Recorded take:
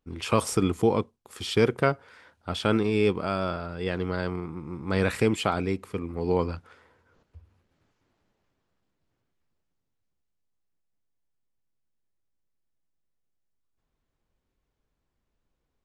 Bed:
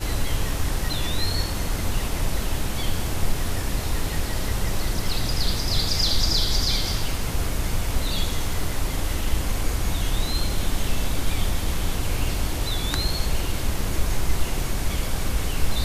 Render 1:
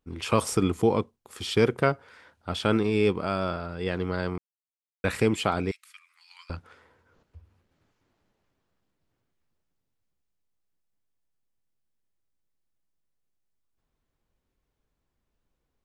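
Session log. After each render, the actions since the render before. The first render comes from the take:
0:04.38–0:05.04: silence
0:05.71–0:06.50: Bessel high-pass filter 2,500 Hz, order 8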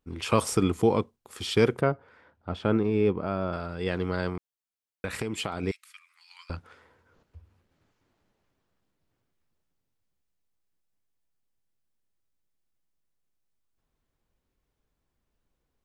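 0:01.81–0:03.53: low-pass filter 1,000 Hz 6 dB per octave
0:04.29–0:05.63: downward compressor, threshold −27 dBFS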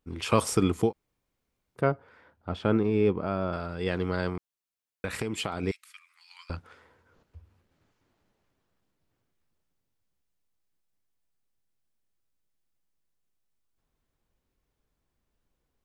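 0:00.88–0:01.80: fill with room tone, crossfade 0.10 s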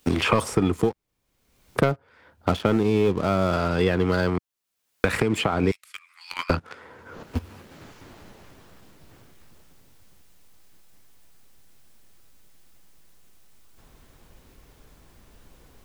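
leveller curve on the samples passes 2
multiband upward and downward compressor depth 100%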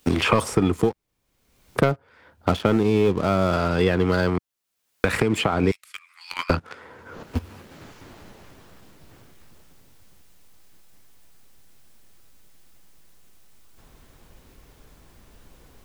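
level +1.5 dB
brickwall limiter −3 dBFS, peak gain reduction 1.5 dB

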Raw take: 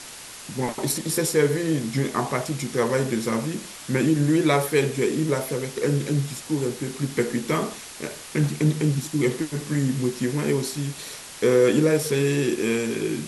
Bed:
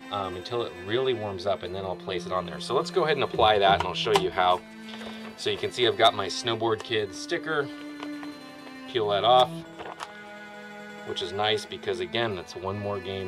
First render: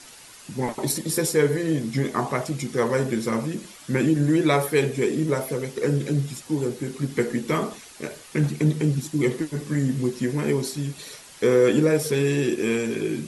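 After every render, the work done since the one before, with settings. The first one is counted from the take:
broadband denoise 8 dB, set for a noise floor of −40 dBFS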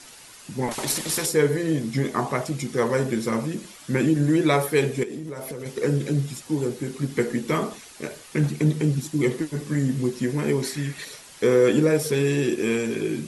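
0:00.71–0:01.26: every bin compressed towards the loudest bin 2 to 1
0:05.03–0:05.66: downward compressor 16 to 1, threshold −29 dBFS
0:10.62–0:11.05: parametric band 1,900 Hz +14 dB 0.69 octaves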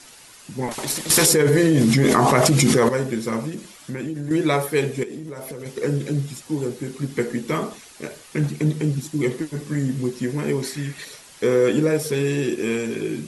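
0:01.10–0:02.89: envelope flattener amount 100%
0:03.49–0:04.31: downward compressor 4 to 1, threshold −26 dBFS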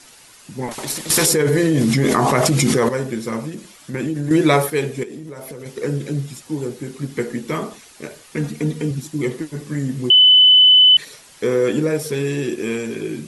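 0:03.94–0:04.70: clip gain +5.5 dB
0:08.36–0:08.91: comb filter 4.2 ms, depth 58%
0:10.10–0:10.97: beep over 3,010 Hz −6.5 dBFS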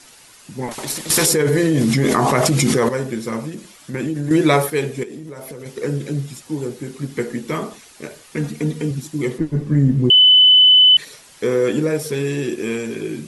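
0:09.38–0:10.10: spectral tilt −3.5 dB per octave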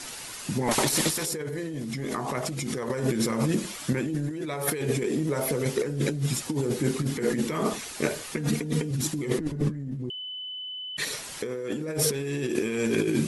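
brickwall limiter −11.5 dBFS, peak gain reduction 9 dB
compressor whose output falls as the input rises −29 dBFS, ratio −1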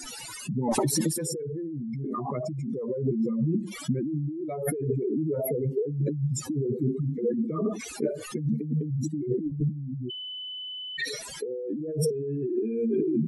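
expanding power law on the bin magnitudes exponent 3.1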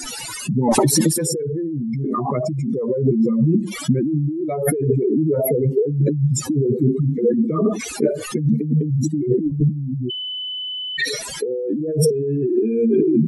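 level +9.5 dB

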